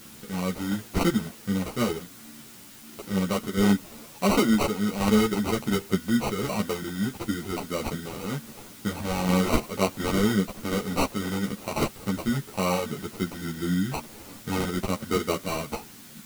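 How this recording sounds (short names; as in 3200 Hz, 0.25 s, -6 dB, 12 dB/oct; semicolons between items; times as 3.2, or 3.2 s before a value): aliases and images of a low sample rate 1700 Hz, jitter 0%; tremolo saw down 1.4 Hz, depth 40%; a quantiser's noise floor 8-bit, dither triangular; a shimmering, thickened sound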